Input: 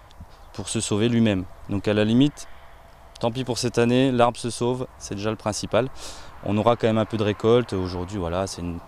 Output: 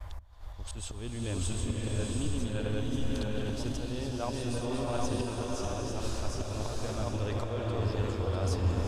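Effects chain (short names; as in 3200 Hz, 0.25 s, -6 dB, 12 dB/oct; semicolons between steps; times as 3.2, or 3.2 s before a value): regenerating reverse delay 0.382 s, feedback 52%, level -6 dB; in parallel at -10 dB: hard clip -13 dBFS, distortion -17 dB; on the sum: auto swell 0.52 s; reverse; compressor 5:1, threshold -29 dBFS, peak gain reduction 15.5 dB; reverse; expander -47 dBFS; resonant low shelf 110 Hz +11.5 dB, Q 1.5; bloom reverb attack 0.74 s, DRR -1 dB; gain -5 dB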